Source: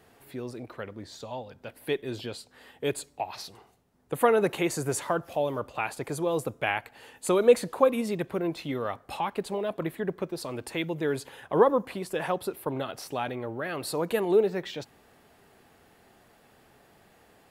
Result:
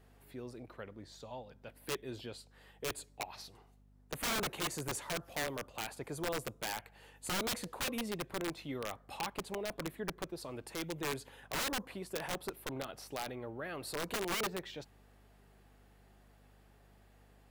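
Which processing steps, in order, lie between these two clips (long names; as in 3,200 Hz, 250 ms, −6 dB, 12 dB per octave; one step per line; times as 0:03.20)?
mains hum 50 Hz, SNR 25 dB
wrap-around overflow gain 21 dB
level −9 dB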